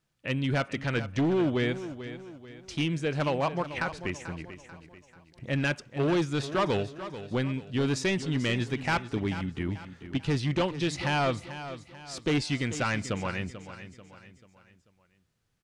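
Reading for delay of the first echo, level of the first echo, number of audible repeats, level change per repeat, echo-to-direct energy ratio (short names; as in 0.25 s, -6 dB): 0.439 s, -12.5 dB, 3, -7.5 dB, -11.5 dB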